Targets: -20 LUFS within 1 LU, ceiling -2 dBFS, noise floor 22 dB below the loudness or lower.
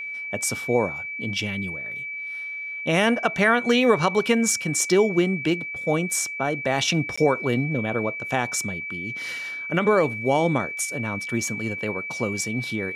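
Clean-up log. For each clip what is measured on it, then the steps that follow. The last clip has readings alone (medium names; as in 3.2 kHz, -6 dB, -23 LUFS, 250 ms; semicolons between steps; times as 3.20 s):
dropouts 1; longest dropout 15 ms; steady tone 2.3 kHz; tone level -30 dBFS; loudness -23.5 LUFS; peak level -6.5 dBFS; loudness target -20.0 LUFS
-> interpolate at 7.16 s, 15 ms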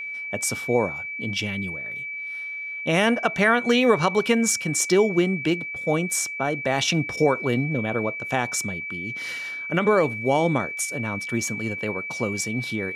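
dropouts 0; steady tone 2.3 kHz; tone level -30 dBFS
-> band-stop 2.3 kHz, Q 30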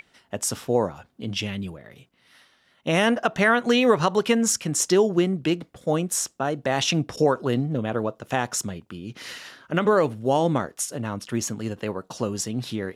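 steady tone not found; loudness -24.0 LUFS; peak level -6.5 dBFS; loudness target -20.0 LUFS
-> trim +4 dB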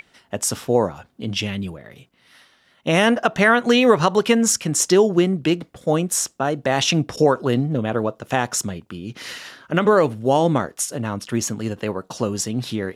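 loudness -20.0 LUFS; peak level -2.5 dBFS; noise floor -59 dBFS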